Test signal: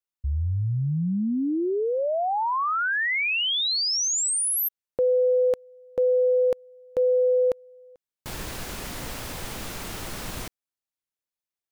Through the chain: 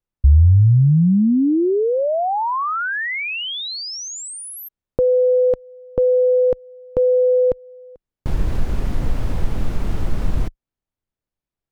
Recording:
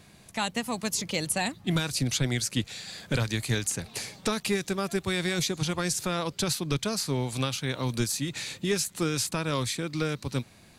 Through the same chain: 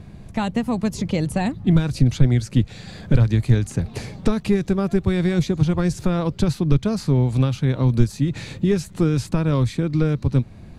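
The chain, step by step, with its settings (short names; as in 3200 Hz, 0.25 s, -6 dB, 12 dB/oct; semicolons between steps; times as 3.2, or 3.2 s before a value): tilt -4 dB/oct; in parallel at 0 dB: compressor, threshold -25 dBFS; on the sum: gain -1 dB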